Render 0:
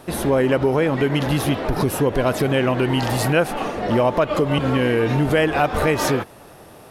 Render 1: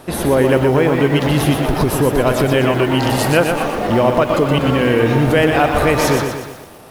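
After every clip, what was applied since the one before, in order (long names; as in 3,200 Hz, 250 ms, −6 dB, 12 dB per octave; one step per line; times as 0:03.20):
feedback echo at a low word length 121 ms, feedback 55%, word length 7 bits, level −5.5 dB
level +3.5 dB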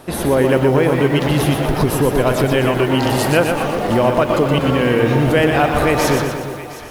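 delay that swaps between a low-pass and a high-pass 357 ms, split 850 Hz, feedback 58%, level −11 dB
level −1 dB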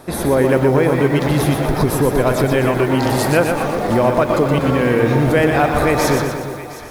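parametric band 2,900 Hz −10 dB 0.21 octaves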